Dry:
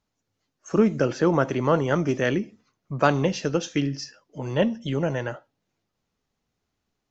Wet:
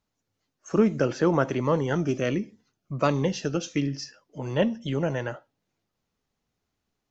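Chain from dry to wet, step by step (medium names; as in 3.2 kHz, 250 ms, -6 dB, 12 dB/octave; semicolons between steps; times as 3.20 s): 1.61–3.88 s: Shepard-style phaser falling 1.4 Hz; trim -1.5 dB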